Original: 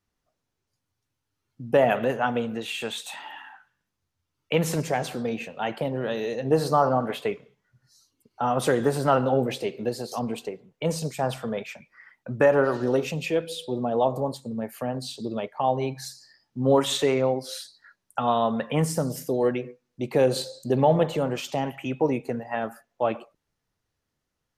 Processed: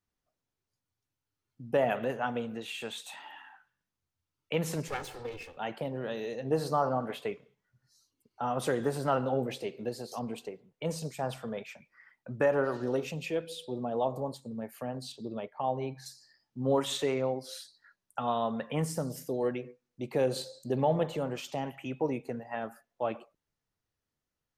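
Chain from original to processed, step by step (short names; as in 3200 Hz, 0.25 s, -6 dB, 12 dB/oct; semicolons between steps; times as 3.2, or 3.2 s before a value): 4.88–5.57 minimum comb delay 2.3 ms; 15.12–16.06 high shelf 4900 Hz -10.5 dB; gain -7.5 dB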